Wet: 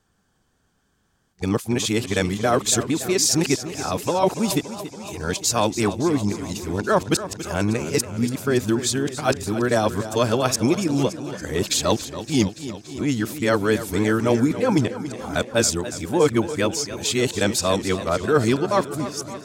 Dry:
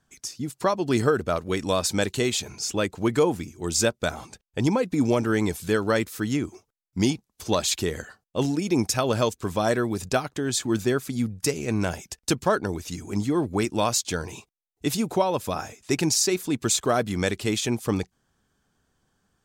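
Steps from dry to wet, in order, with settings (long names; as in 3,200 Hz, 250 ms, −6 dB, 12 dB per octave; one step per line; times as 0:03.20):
played backwards from end to start
feedback echo with a swinging delay time 283 ms, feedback 67%, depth 83 cents, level −13 dB
level +3 dB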